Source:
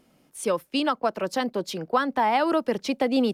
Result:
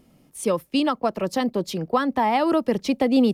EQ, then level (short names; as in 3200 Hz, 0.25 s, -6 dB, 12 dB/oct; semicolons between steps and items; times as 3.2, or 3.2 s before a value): low shelf 230 Hz +11.5 dB; high shelf 10000 Hz +4.5 dB; notch 1500 Hz, Q 10; 0.0 dB